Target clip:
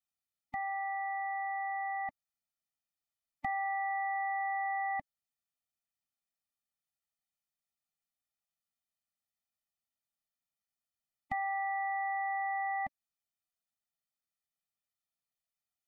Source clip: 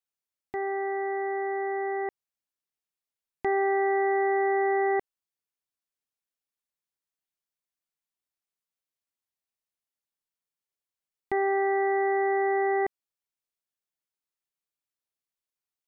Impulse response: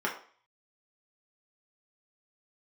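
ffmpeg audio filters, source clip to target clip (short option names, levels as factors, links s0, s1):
-filter_complex "[0:a]acrossover=split=460|3000[s0][s1][s2];[s1]acompressor=threshold=0.02:ratio=4[s3];[s0][s3][s2]amix=inputs=3:normalize=0,afftfilt=real='re*eq(mod(floor(b*sr/1024/290),2),0)':imag='im*eq(mod(floor(b*sr/1024/290),2),0)':win_size=1024:overlap=0.75"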